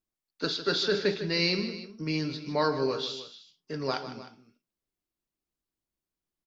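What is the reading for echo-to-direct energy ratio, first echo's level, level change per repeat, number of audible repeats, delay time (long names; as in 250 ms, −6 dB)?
−10.5 dB, −12.0 dB, −4.5 dB, 2, 154 ms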